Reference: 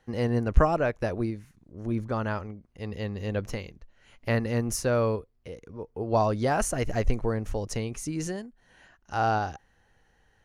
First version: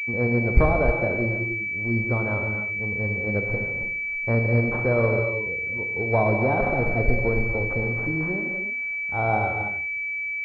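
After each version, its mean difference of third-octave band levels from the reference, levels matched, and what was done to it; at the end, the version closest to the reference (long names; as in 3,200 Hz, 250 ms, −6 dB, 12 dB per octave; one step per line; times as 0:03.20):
8.5 dB: reverb whose tail is shaped and stops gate 340 ms flat, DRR 2.5 dB
switching amplifier with a slow clock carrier 2,300 Hz
level +2 dB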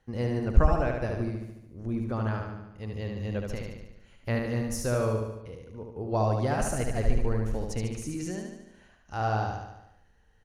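5.0 dB: low-shelf EQ 180 Hz +6.5 dB
on a send: repeating echo 73 ms, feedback 58%, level −4 dB
on the sum: level −5.5 dB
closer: second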